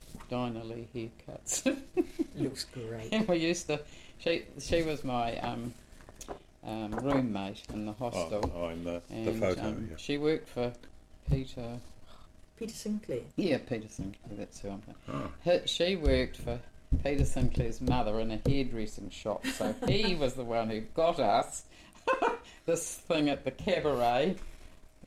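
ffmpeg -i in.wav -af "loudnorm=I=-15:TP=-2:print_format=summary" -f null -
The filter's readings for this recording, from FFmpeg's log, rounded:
Input Integrated:    -32.9 LUFS
Input True Peak:     -15.8 dBTP
Input LRA:             5.0 LU
Input Threshold:     -43.4 LUFS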